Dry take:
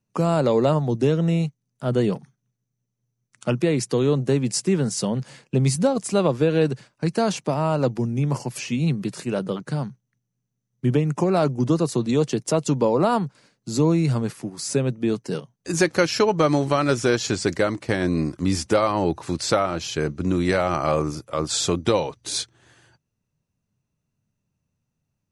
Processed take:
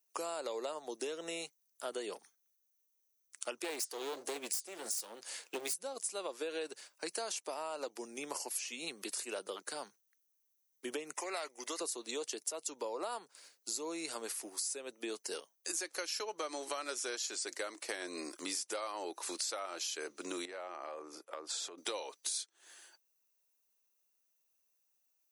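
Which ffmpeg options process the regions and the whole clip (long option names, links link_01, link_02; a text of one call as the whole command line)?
ffmpeg -i in.wav -filter_complex "[0:a]asettb=1/sr,asplit=3[link_01][link_02][link_03];[link_01]atrim=end=3.644[link_04];[link_02]atrim=start=3.64:end=5.74,asetpts=PTS-STARTPTS,afade=type=in:duration=0.004:curve=qsin,afade=type=out:start_time=2.096:duration=0.004:curve=qsin,acontrast=88,flanger=delay=2.2:depth=8:regen=-81:speed=1.3:shape=triangular,aeval=exprs='clip(val(0),-1,0.0596)':channel_layout=same[link_05];[link_03]atrim=start=5.736[link_06];[link_04][link_05]acrossfade=duration=0.004:curve1=hsin:curve2=qsin[link_07];[link_07][link_06]acrossfade=duration=0.004:curve1=qsin:curve2=hsin,asettb=1/sr,asplit=3[link_08][link_09][link_10];[link_08]atrim=end=11.134[link_11];[link_09]atrim=start=11.13:end=11.81,asetpts=PTS-STARTPTS,afade=type=in:duration=0.004:curve=qsin,afade=type=out:start_time=0.676:duration=0.004:curve=qsin,highpass=frequency=840:poles=1,equalizer=frequency=2000:width=4.9:gain=14[link_12];[link_10]atrim=start=11.806[link_13];[link_11][link_12]acrossfade=duration=0.004:curve1=hsin:curve2=qsin[link_14];[link_14][link_13]acrossfade=duration=0.004:curve1=qsin:curve2=hsin,asettb=1/sr,asplit=3[link_15][link_16][link_17];[link_15]atrim=end=20.454[link_18];[link_16]atrim=start=20.45:end=21.78,asetpts=PTS-STARTPTS,afade=type=in:duration=0.004:curve=qsin,afade=type=out:start_time=1.326:duration=0.004:curve=qsin,lowpass=frequency=1200:poles=1,acompressor=threshold=-30dB:ratio=12:attack=3.2:release=140:knee=1:detection=peak[link_19];[link_17]atrim=start=21.776[link_20];[link_18][link_19]acrossfade=duration=0.004:curve1=hsin:curve2=qsin[link_21];[link_21][link_20]acrossfade=duration=0.004:curve1=qsin:curve2=hsin,highpass=frequency=330:width=0.5412,highpass=frequency=330:width=1.3066,aemphasis=mode=production:type=riaa,acompressor=threshold=-31dB:ratio=6,volume=-6dB" out.wav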